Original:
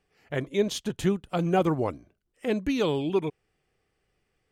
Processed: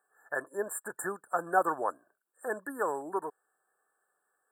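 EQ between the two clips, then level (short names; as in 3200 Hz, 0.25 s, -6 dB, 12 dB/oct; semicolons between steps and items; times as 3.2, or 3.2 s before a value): HPF 990 Hz 12 dB/oct; brick-wall FIR band-stop 1800–7200 Hz; +6.5 dB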